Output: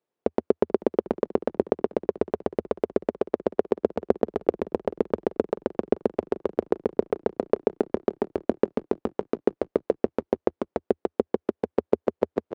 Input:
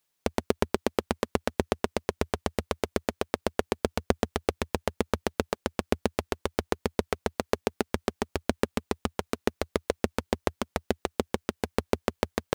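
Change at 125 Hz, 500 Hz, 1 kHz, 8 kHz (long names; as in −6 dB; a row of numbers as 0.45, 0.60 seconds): −5.0 dB, +6.0 dB, −1.5 dB, below −20 dB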